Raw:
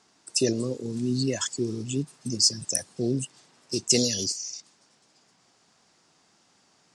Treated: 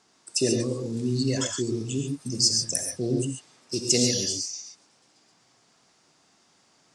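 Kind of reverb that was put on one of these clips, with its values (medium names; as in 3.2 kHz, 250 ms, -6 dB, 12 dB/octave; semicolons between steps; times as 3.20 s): gated-style reverb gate 160 ms rising, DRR 2.5 dB; trim -1 dB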